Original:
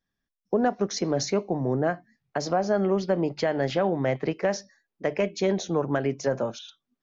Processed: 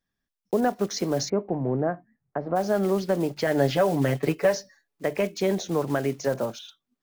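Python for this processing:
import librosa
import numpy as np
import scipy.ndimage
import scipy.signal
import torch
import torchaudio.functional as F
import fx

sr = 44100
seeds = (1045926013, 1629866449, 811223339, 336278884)

y = fx.block_float(x, sr, bits=5)
y = fx.bessel_lowpass(y, sr, hz=1200.0, order=4, at=(1.28, 2.55), fade=0.02)
y = fx.comb(y, sr, ms=7.0, depth=0.86, at=(3.46, 5.05))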